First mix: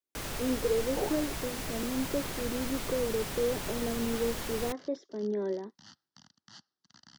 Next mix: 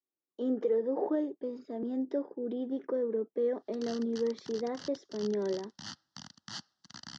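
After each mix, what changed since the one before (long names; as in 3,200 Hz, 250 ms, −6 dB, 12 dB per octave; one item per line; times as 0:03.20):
first sound: muted
second sound +10.5 dB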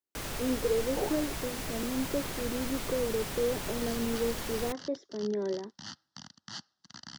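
first sound: unmuted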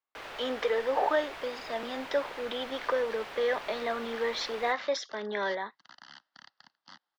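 speech: remove resonant band-pass 360 Hz, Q 2.5
second sound: entry −1.05 s
master: add three-way crossover with the lows and the highs turned down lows −21 dB, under 430 Hz, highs −22 dB, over 3,700 Hz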